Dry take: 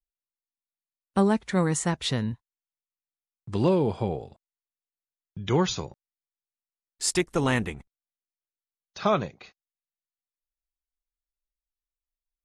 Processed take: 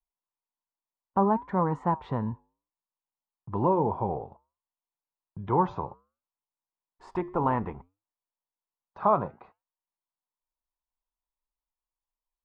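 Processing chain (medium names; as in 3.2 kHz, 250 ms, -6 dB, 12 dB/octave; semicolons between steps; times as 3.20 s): in parallel at -1 dB: peak limiter -20.5 dBFS, peak gain reduction 8.5 dB; on the sum: resonant low-pass 970 Hz, resonance Q 5; flange 0.62 Hz, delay 4.2 ms, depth 5.9 ms, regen -87%; trim -3.5 dB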